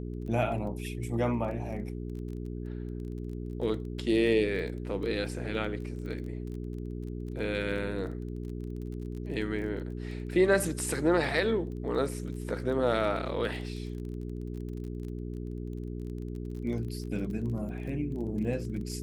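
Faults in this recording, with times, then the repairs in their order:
crackle 21 per s -39 dBFS
hum 60 Hz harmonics 7 -37 dBFS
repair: de-click; de-hum 60 Hz, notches 7

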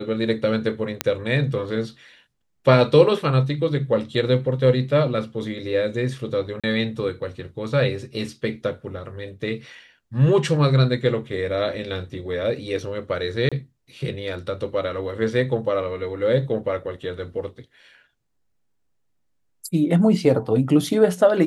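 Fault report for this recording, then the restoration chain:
1.01 s: pop -4 dBFS
6.60–6.64 s: dropout 36 ms
13.49–13.52 s: dropout 26 ms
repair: de-click; interpolate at 6.60 s, 36 ms; interpolate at 13.49 s, 26 ms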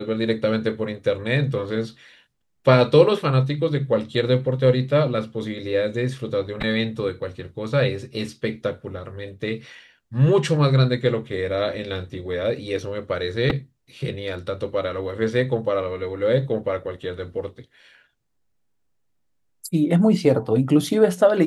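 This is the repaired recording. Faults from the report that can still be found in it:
1.01 s: pop

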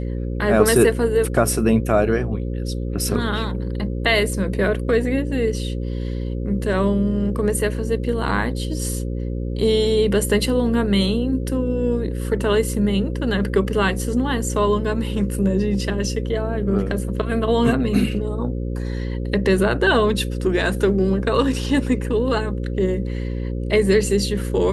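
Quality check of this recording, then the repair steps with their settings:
buzz 60 Hz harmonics 9 -25 dBFS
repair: de-hum 60 Hz, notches 9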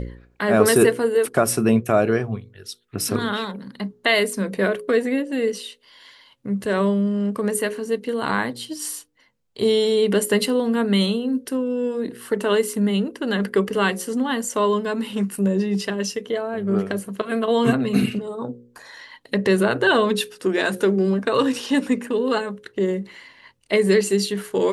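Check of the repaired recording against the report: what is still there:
nothing left

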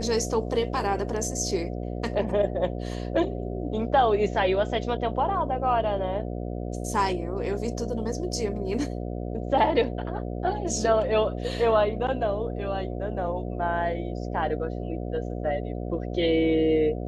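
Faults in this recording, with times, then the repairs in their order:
buzz 60 Hz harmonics 12 -32 dBFS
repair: de-hum 60 Hz, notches 12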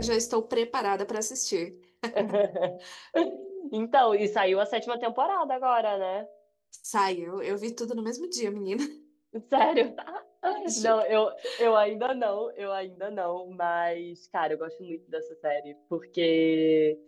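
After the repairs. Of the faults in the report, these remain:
nothing left

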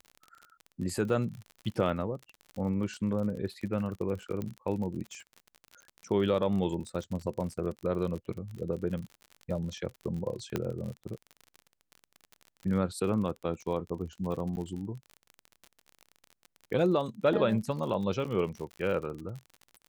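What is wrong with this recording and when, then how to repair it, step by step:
crackle 44 per s -37 dBFS
4.42 s: pop -23 dBFS
10.56 s: pop -16 dBFS
14.56–14.57 s: dropout 9.8 ms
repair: de-click; interpolate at 14.56 s, 9.8 ms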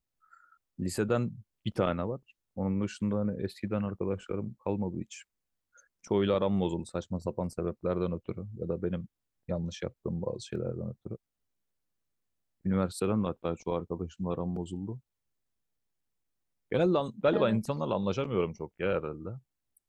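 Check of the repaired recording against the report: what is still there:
10.56 s: pop

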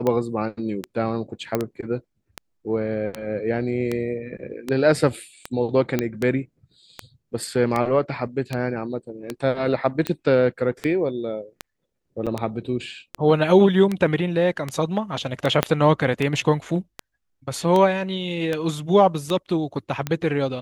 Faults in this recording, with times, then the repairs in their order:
tick 78 rpm -11 dBFS
1.55 s: pop -9 dBFS
5.99 s: pop -8 dBFS
12.26–12.27 s: dropout 6.7 ms
15.63 s: pop -3 dBFS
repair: de-click; interpolate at 12.26 s, 6.7 ms

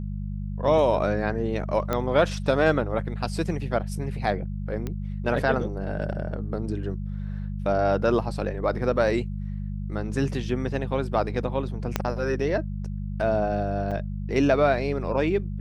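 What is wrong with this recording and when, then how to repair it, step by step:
hum 50 Hz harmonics 4 -31 dBFS
1.93 s: pop -12 dBFS
4.87 s: pop -18 dBFS
11.96 s: pop -8 dBFS
13.91–13.92 s: dropout 5.8 ms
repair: de-click; de-hum 50 Hz, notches 4; interpolate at 13.91 s, 5.8 ms

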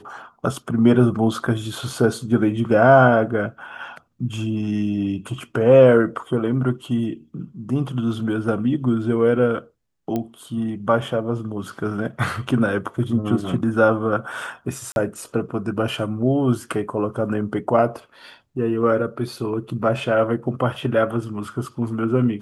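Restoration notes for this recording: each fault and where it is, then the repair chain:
10.16 s: pop -13 dBFS
14.92–14.96 s: dropout 41 ms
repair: de-click; interpolate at 14.92 s, 41 ms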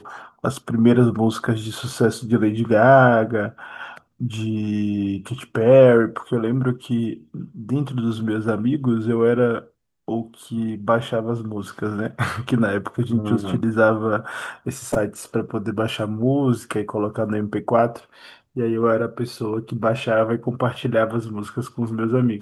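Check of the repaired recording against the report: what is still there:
nothing left

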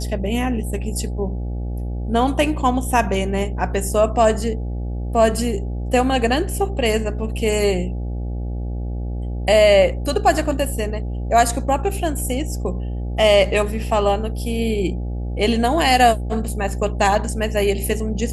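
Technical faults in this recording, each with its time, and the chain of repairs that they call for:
buzz 60 Hz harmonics 14 -25 dBFS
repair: de-hum 60 Hz, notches 14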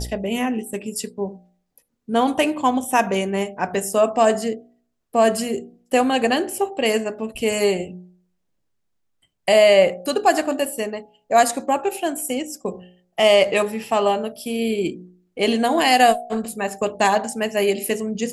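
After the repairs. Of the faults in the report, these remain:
nothing left

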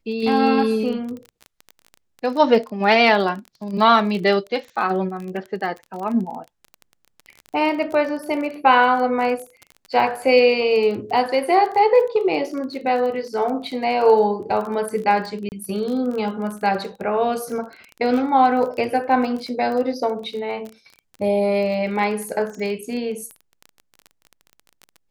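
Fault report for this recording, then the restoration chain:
crackle 22 per s -28 dBFS
15.49–15.52 s: dropout 29 ms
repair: de-click; interpolate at 15.49 s, 29 ms

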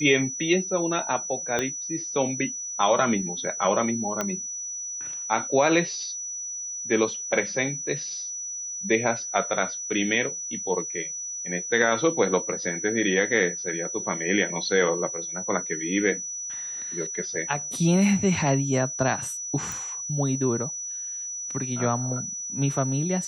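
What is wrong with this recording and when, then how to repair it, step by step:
whine 5.9 kHz -31 dBFS
1.59 s: pop -11 dBFS
4.21 s: pop -11 dBFS
19.72 s: pop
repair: de-click; band-stop 5.9 kHz, Q 30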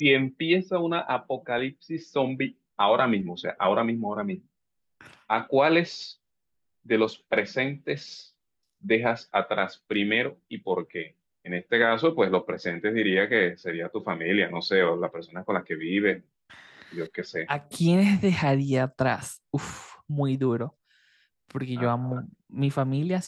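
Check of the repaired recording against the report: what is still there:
1.59 s: pop

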